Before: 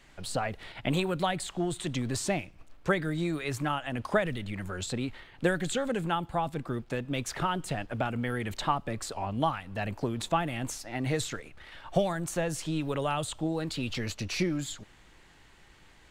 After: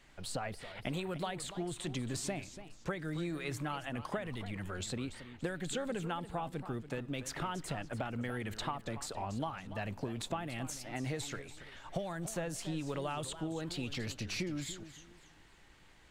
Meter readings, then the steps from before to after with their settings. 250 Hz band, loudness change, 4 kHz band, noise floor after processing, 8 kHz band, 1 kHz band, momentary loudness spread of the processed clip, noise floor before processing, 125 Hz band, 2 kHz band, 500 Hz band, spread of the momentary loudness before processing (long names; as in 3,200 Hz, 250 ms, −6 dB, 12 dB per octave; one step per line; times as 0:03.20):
−7.0 dB, −7.5 dB, −6.0 dB, −60 dBFS, −5.0 dB, −9.0 dB, 5 LU, −57 dBFS, −7.0 dB, −8.0 dB, −8.5 dB, 7 LU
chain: downward compressor, threshold −29 dBFS, peak gain reduction 9.5 dB
feedback echo with a swinging delay time 281 ms, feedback 31%, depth 203 cents, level −13 dB
level −4.5 dB